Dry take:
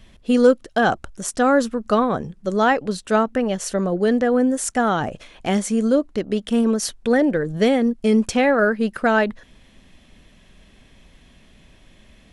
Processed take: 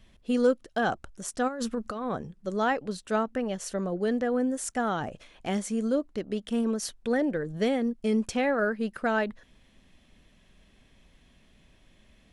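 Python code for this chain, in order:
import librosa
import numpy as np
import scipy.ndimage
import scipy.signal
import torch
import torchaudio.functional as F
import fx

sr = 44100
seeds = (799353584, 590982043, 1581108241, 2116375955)

y = fx.over_compress(x, sr, threshold_db=-23.0, ratio=-1.0, at=(1.47, 2.09), fade=0.02)
y = F.gain(torch.from_numpy(y), -9.0).numpy()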